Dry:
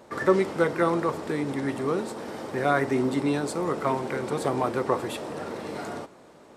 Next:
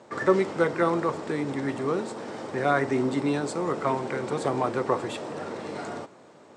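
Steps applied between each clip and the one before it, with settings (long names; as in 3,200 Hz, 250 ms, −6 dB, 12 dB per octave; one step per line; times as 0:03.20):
elliptic band-pass filter 100–8,000 Hz, stop band 50 dB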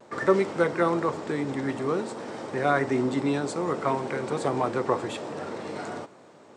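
pitch vibrato 0.54 Hz 28 cents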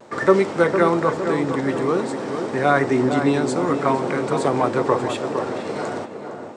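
tape delay 458 ms, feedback 55%, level −6 dB, low-pass 1,500 Hz
level +6 dB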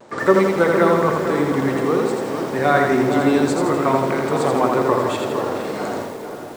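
feedback echo at a low word length 82 ms, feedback 55%, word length 7 bits, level −3 dB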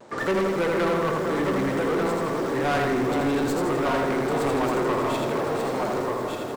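stylus tracing distortion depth 0.057 ms
single-tap delay 1,187 ms −6 dB
soft clipping −17 dBFS, distortion −10 dB
level −2.5 dB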